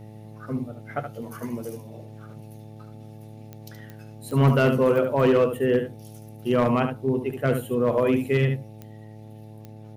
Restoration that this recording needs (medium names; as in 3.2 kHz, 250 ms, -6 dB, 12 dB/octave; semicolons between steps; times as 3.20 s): clip repair -13 dBFS; de-click; de-hum 108 Hz, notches 8; inverse comb 73 ms -8 dB